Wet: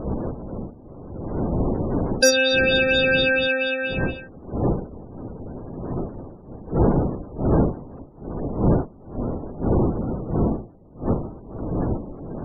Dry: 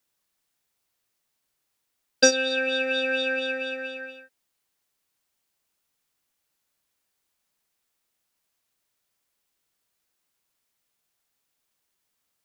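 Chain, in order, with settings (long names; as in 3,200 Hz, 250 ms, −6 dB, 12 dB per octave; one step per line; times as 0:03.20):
wind on the microphone 340 Hz −32 dBFS
soft clipping −18 dBFS, distortion −12 dB
gate on every frequency bin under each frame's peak −25 dB strong
level +8 dB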